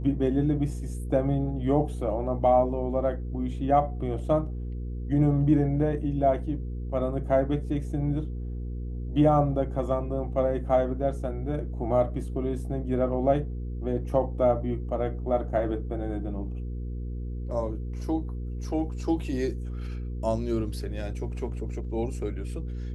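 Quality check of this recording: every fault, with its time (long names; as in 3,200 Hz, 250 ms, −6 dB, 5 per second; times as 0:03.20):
mains hum 60 Hz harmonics 8 −33 dBFS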